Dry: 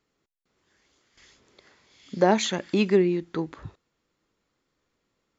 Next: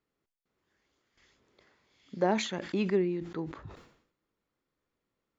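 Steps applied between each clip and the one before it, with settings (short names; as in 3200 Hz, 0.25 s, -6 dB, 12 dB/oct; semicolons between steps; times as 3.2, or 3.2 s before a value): high shelf 4400 Hz -9.5 dB; sustainer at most 87 dB/s; gain -7.5 dB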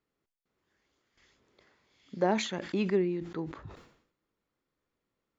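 nothing audible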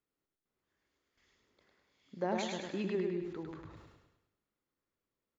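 feedback echo 0.103 s, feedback 47%, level -3.5 dB; gain -8 dB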